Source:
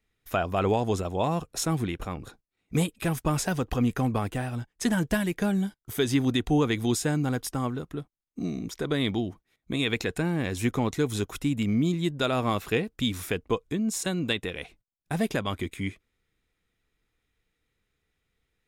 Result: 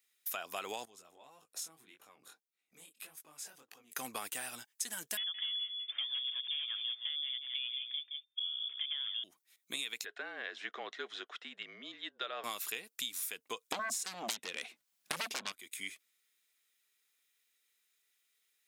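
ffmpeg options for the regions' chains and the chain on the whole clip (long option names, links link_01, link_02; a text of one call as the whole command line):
ffmpeg -i in.wav -filter_complex "[0:a]asettb=1/sr,asplit=3[link_01][link_02][link_03];[link_01]atrim=end=0.854[link_04];[link_02]atrim=start=0.85:end=3.92,asetpts=PTS-STARTPTS,afade=type=in:duration=0.004:curve=qsin,afade=type=out:start_time=3.066:duration=0.004:curve=qsin,highshelf=frequency=2300:gain=-9.5,acompressor=threshold=-41dB:ratio=6:attack=3.2:release=140:knee=1:detection=peak,flanger=delay=18.5:depth=6.3:speed=1.7[link_05];[link_03]atrim=start=3.916[link_06];[link_04][link_05]acrossfade=duration=0.004:curve1=hsin:curve2=qsin[link_07];[link_07][link_06]acrossfade=duration=0.004:curve1=qsin:curve2=hsin,asettb=1/sr,asplit=3[link_08][link_09][link_10];[link_08]atrim=end=5.174[link_11];[link_09]atrim=start=5.17:end=9.24,asetpts=PTS-STARTPTS,afade=type=in:duration=0.004:curve=qsin,afade=type=out:start_time=4.066:duration=0.004:curve=qsin,aeval=exprs='0.112*(abs(mod(val(0)/0.112+3,4)-2)-1)':channel_layout=same,aecho=1:1:169:0.316,atrim=end_sample=179487,lowpass=frequency=3100:width_type=q:width=0.5098,lowpass=frequency=3100:width_type=q:width=0.6013,lowpass=frequency=3100:width_type=q:width=0.9,lowpass=frequency=3100:width_type=q:width=2.563,afreqshift=-3600[link_12];[link_10]atrim=start=9.236[link_13];[link_11][link_12]acrossfade=duration=0.004:curve1=hsin:curve2=qsin[link_14];[link_14][link_13]acrossfade=duration=0.004:curve1=qsin:curve2=hsin,asettb=1/sr,asplit=3[link_15][link_16][link_17];[link_15]atrim=end=10.054[link_18];[link_16]atrim=start=10.05:end=12.44,asetpts=PTS-STARTPTS,afade=type=in:duration=0.004:curve=qsin,afade=type=out:start_time=2.386:duration=0.004:curve=qsin,afreqshift=-37,highpass=450,equalizer=frequency=450:width_type=q:width=4:gain=4,equalizer=frequency=660:width_type=q:width=4:gain=3,equalizer=frequency=940:width_type=q:width=4:gain=-7,equalizer=frequency=1700:width_type=q:width=4:gain=3,equalizer=frequency=2400:width_type=q:width=4:gain=-10,lowpass=frequency=3000:width=0.5412,lowpass=frequency=3000:width=1.3066[link_19];[link_17]atrim=start=12.436[link_20];[link_18][link_19]acrossfade=duration=0.004:curve1=hsin:curve2=qsin[link_21];[link_21][link_20]acrossfade=duration=0.004:curve1=qsin:curve2=hsin,asettb=1/sr,asplit=3[link_22][link_23][link_24];[link_22]atrim=end=13.724[link_25];[link_23]atrim=start=13.72:end=15.52,asetpts=PTS-STARTPTS,afade=type=in:duration=0.004:curve=qsin,afade=type=out:start_time=1.796:duration=0.004:curve=qsin,lowpass=frequency=1800:poles=1,equalizer=frequency=230:width=4.7:gain=10,aeval=exprs='0.282*sin(PI/2*6.31*val(0)/0.282)':channel_layout=same[link_26];[link_24]atrim=start=15.516[link_27];[link_25][link_26]acrossfade=duration=0.004:curve1=hsin:curve2=qsin[link_28];[link_28][link_27]acrossfade=duration=0.004:curve1=qsin:curve2=hsin,highpass=180,aderivative,acompressor=threshold=-45dB:ratio=12,volume=9.5dB" out.wav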